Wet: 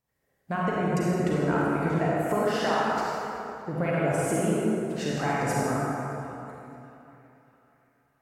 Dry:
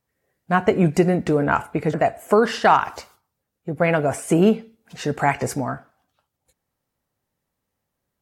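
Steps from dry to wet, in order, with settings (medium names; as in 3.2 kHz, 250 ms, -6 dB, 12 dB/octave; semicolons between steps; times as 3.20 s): compression, threshold -22 dBFS, peak gain reduction 12 dB; band-passed feedback delay 617 ms, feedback 48%, band-pass 1.9 kHz, level -19.5 dB; reverberation RT60 3.1 s, pre-delay 33 ms, DRR -6 dB; trim -6 dB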